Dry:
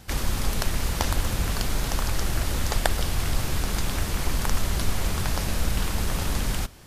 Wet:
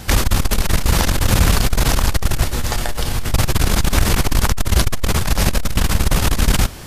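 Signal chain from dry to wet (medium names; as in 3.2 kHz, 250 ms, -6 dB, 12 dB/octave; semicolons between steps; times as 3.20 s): 2.44–3.34 s: feedback comb 120 Hz, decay 0.34 s, harmonics all, mix 70%; loudness maximiser +14.5 dB; transformer saturation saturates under 66 Hz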